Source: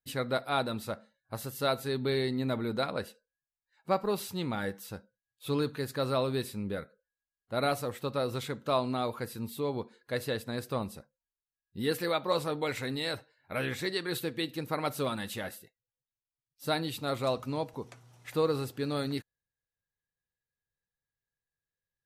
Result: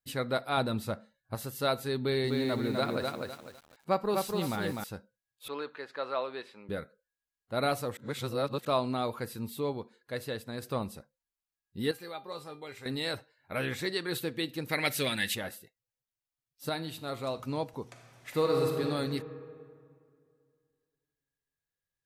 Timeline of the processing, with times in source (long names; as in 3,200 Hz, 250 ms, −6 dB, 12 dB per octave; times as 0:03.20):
0:00.57–0:01.35: low-shelf EQ 230 Hz +7 dB
0:01.99–0:04.84: feedback echo at a low word length 251 ms, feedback 35%, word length 9 bits, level −3.5 dB
0:05.48–0:06.69: band-pass filter 600–2,700 Hz
0:07.97–0:08.65: reverse
0:09.73–0:10.62: clip gain −3.5 dB
0:11.91–0:12.86: tuned comb filter 400 Hz, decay 0.25 s, mix 80%
0:14.69–0:15.35: high shelf with overshoot 1,500 Hz +7.5 dB, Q 3
0:16.69–0:17.40: tuned comb filter 53 Hz, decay 0.71 s, mix 50%
0:17.90–0:18.83: thrown reverb, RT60 2.3 s, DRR 0.5 dB